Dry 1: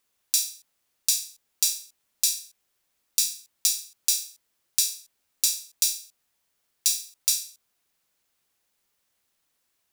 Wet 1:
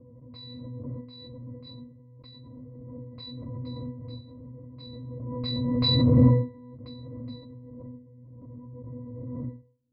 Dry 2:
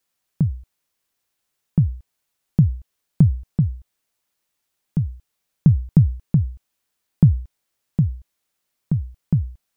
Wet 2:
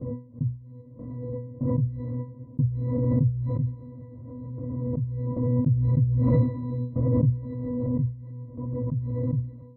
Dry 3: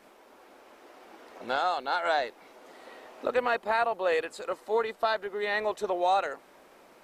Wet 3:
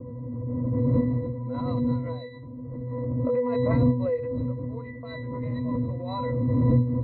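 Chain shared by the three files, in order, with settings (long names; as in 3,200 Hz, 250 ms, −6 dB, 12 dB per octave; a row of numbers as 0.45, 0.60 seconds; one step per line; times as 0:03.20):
one-sided soft clipper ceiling −10.5 dBFS
wind on the microphone 390 Hz −29 dBFS
noise gate with hold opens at −37 dBFS
low-pass that shuts in the quiet parts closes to 880 Hz, open at −17 dBFS
linear-phase brick-wall low-pass 5,200 Hz
low-shelf EQ 340 Hz +9.5 dB
resonances in every octave B, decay 0.35 s
background raised ahead of every attack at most 20 dB per second
loudness normalisation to −27 LKFS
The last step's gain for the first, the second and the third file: +2.0, −5.0, +6.5 decibels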